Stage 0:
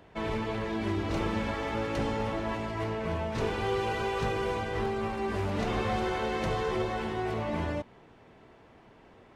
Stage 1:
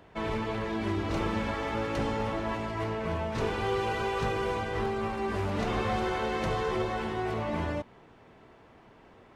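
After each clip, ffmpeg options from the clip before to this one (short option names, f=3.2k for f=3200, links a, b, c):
-af "equalizer=f=1.2k:t=o:w=0.77:g=2"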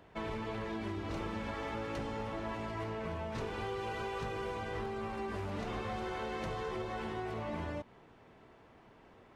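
-af "acompressor=threshold=-31dB:ratio=6,volume=-4dB"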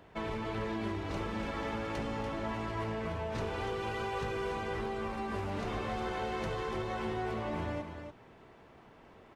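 -af "aecho=1:1:289:0.422,volume=2dB"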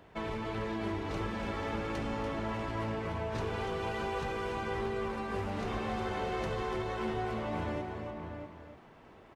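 -filter_complex "[0:a]asplit=2[a][b];[b]adelay=641.4,volume=-6dB,highshelf=f=4k:g=-14.4[c];[a][c]amix=inputs=2:normalize=0"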